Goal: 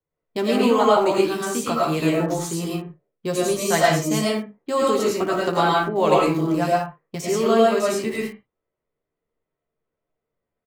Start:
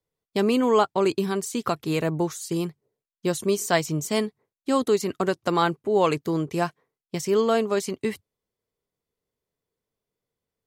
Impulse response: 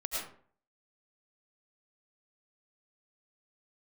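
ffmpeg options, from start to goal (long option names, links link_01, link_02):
-filter_complex "[0:a]aecho=1:1:13|24|58:0.562|0.158|0.251[link_01];[1:a]atrim=start_sample=2205,afade=type=out:start_time=0.3:duration=0.01,atrim=end_sample=13671[link_02];[link_01][link_02]afir=irnorm=-1:irlink=0,acrossover=split=480|2700[link_03][link_04][link_05];[link_05]aeval=exprs='val(0)*gte(abs(val(0)),0.00501)':channel_layout=same[link_06];[link_03][link_04][link_06]amix=inputs=3:normalize=0"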